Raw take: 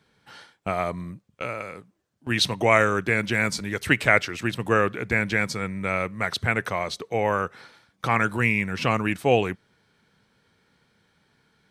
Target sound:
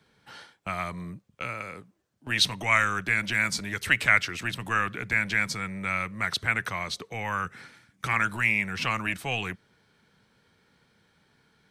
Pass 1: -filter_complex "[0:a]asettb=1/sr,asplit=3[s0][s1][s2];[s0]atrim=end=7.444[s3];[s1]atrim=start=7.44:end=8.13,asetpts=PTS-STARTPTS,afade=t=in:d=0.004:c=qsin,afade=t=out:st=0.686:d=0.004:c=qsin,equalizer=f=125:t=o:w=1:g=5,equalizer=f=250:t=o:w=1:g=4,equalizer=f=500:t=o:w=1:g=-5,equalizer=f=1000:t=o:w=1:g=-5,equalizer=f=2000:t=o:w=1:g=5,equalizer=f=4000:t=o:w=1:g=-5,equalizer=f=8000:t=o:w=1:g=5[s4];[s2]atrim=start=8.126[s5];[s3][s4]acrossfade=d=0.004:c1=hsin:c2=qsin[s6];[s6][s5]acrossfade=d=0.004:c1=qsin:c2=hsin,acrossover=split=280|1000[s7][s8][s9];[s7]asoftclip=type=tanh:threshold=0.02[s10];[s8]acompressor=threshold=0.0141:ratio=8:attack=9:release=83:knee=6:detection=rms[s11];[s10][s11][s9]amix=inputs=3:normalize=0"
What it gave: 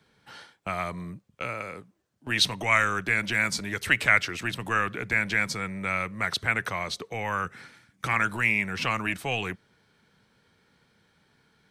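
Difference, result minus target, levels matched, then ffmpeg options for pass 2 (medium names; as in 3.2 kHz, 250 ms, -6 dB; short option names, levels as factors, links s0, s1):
compression: peak gain reduction -6.5 dB
-filter_complex "[0:a]asettb=1/sr,asplit=3[s0][s1][s2];[s0]atrim=end=7.444[s3];[s1]atrim=start=7.44:end=8.13,asetpts=PTS-STARTPTS,afade=t=in:d=0.004:c=qsin,afade=t=out:st=0.686:d=0.004:c=qsin,equalizer=f=125:t=o:w=1:g=5,equalizer=f=250:t=o:w=1:g=4,equalizer=f=500:t=o:w=1:g=-5,equalizer=f=1000:t=o:w=1:g=-5,equalizer=f=2000:t=o:w=1:g=5,equalizer=f=4000:t=o:w=1:g=-5,equalizer=f=8000:t=o:w=1:g=5[s4];[s2]atrim=start=8.126[s5];[s3][s4]acrossfade=d=0.004:c1=hsin:c2=qsin[s6];[s6][s5]acrossfade=d=0.004:c1=qsin:c2=hsin,acrossover=split=280|1000[s7][s8][s9];[s7]asoftclip=type=tanh:threshold=0.02[s10];[s8]acompressor=threshold=0.00596:ratio=8:attack=9:release=83:knee=6:detection=rms[s11];[s10][s11][s9]amix=inputs=3:normalize=0"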